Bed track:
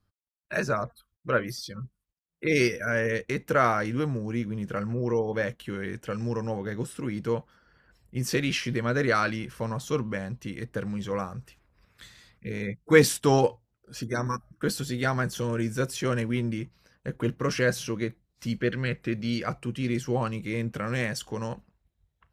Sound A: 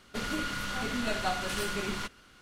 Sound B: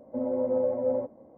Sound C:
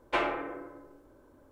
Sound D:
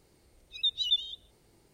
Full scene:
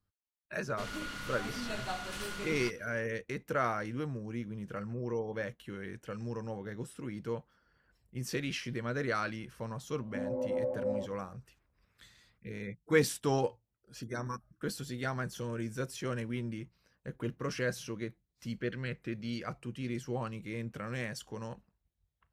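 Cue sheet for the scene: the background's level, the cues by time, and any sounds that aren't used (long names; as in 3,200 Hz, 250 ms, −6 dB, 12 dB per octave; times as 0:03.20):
bed track −9 dB
0:00.63: mix in A −7 dB
0:10.00: mix in B −7 dB
not used: C, D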